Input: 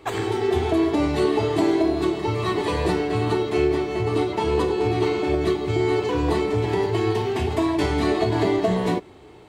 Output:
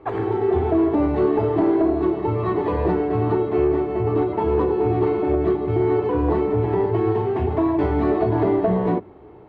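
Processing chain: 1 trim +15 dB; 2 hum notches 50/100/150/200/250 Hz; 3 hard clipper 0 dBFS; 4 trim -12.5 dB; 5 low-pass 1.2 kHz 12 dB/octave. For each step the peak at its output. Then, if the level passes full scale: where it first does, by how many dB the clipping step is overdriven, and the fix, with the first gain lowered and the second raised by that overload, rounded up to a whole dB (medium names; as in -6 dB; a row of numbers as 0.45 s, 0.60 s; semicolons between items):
+5.0 dBFS, +5.0 dBFS, 0.0 dBFS, -12.5 dBFS, -12.0 dBFS; step 1, 5.0 dB; step 1 +10 dB, step 4 -7.5 dB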